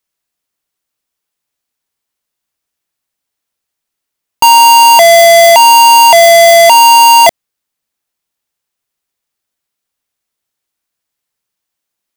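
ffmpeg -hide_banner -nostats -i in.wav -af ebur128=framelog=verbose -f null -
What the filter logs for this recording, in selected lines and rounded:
Integrated loudness:
  I:          -2.8 LUFS
  Threshold: -12.9 LUFS
Loudness range:
  LRA:         9.7 LU
  Threshold: -25.4 LUFS
  LRA low:   -12.3 LUFS
  LRA high:   -2.7 LUFS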